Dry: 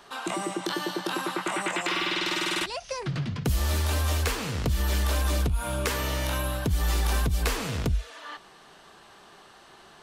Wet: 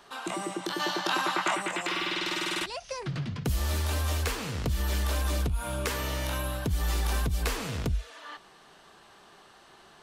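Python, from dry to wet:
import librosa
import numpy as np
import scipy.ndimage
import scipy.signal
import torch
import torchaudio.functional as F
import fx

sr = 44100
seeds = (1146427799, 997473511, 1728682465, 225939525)

y = fx.spec_box(x, sr, start_s=0.79, length_s=0.76, low_hz=580.0, high_hz=7500.0, gain_db=7)
y = y * 10.0 ** (-3.0 / 20.0)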